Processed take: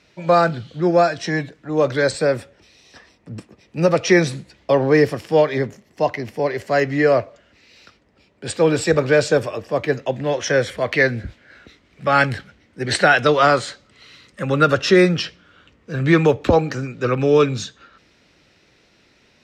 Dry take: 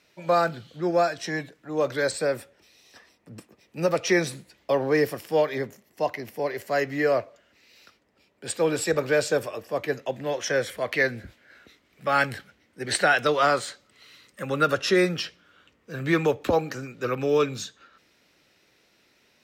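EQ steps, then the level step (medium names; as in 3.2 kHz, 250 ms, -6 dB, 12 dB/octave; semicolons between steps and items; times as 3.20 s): low-pass 7 kHz 12 dB/octave; bass shelf 170 Hz +9.5 dB; +6.0 dB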